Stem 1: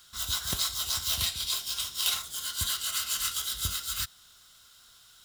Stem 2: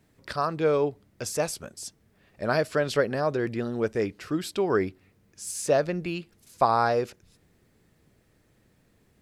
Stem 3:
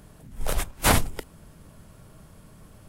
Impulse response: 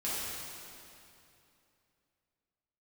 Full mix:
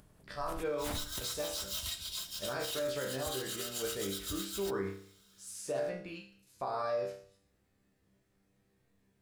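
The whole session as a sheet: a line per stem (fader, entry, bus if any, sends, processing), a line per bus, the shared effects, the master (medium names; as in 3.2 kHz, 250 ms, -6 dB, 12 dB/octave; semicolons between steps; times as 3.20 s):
-10.0 dB, 0.65 s, no send, comb 3.2 ms, depth 53%
+2.5 dB, 0.00 s, no send, chord resonator C2 fifth, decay 0.53 s
-19.0 dB, 0.00 s, no send, upward compressor, threshold -36 dBFS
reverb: none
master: peak limiter -26.5 dBFS, peak gain reduction 8 dB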